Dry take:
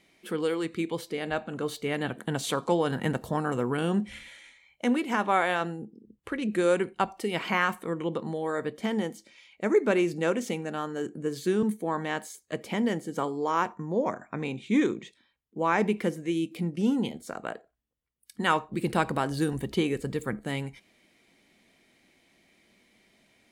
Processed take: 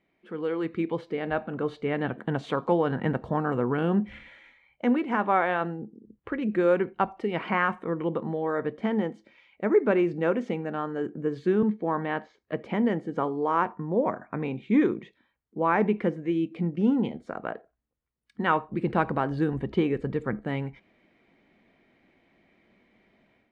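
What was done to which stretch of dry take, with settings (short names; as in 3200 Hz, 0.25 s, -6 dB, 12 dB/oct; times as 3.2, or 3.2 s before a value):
7.63–8.45 notch 4400 Hz, Q 9.5
11.64–12.56 inverse Chebyshev low-pass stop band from 11000 Hz, stop band 50 dB
whole clip: LPF 1900 Hz 12 dB/oct; AGC gain up to 9.5 dB; gain -7 dB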